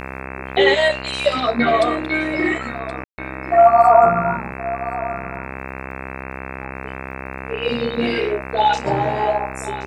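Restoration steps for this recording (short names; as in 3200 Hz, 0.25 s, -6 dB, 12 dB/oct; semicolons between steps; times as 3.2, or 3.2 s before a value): de-click; de-hum 65.9 Hz, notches 40; room tone fill 3.04–3.18; inverse comb 1.073 s -15 dB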